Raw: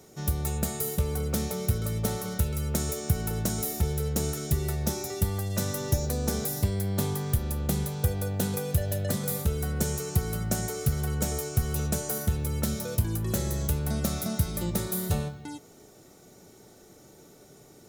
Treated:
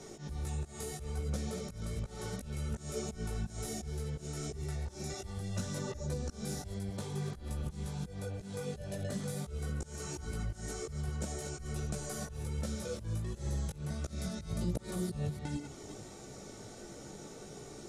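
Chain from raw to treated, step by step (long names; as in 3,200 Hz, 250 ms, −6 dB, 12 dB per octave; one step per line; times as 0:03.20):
delay that plays each chunk backwards 183 ms, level −10 dB
low-pass filter 9,300 Hz 24 dB per octave
volume swells 367 ms
downward compressor 5 to 1, threshold −42 dBFS, peak gain reduction 17 dB
multi-voice chorus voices 6, 1.4 Hz, delay 17 ms, depth 3 ms
level +8 dB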